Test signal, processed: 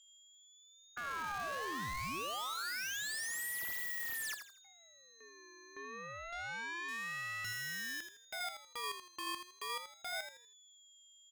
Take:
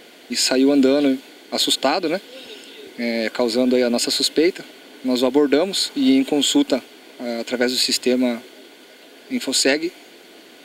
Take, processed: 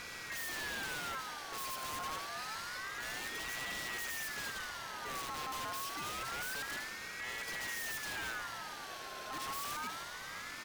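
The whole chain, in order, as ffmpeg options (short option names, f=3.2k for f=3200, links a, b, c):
-filter_complex "[0:a]aeval=exprs='(mod(9.44*val(0)+1,2)-1)/9.44':c=same,aeval=exprs='(tanh(200*val(0)+0.75)-tanh(0.75))/200':c=same,aeval=exprs='val(0)+0.000631*sin(2*PI*5200*n/s)':c=same,asplit=2[a][b];[b]aecho=0:1:81|162|243|324:0.376|0.117|0.0361|0.0112[c];[a][c]amix=inputs=2:normalize=0,aeval=exprs='val(0)*sin(2*PI*1500*n/s+1500*0.3/0.27*sin(2*PI*0.27*n/s))':c=same,volume=6dB"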